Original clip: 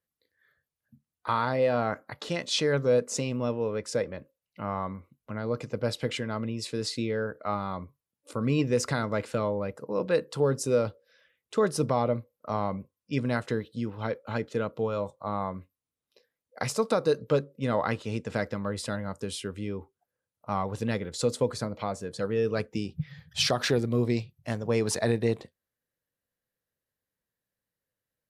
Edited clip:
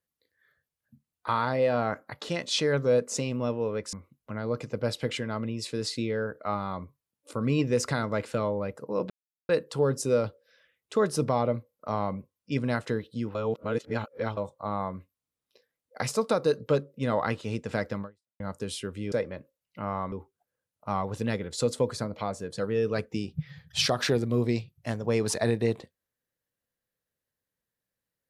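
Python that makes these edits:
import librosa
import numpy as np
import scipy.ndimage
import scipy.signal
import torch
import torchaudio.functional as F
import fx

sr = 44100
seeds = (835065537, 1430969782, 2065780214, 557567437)

y = fx.edit(x, sr, fx.move(start_s=3.93, length_s=1.0, to_s=19.73),
    fx.insert_silence(at_s=10.1, length_s=0.39),
    fx.reverse_span(start_s=13.96, length_s=1.02),
    fx.fade_out_span(start_s=18.63, length_s=0.38, curve='exp'), tone=tone)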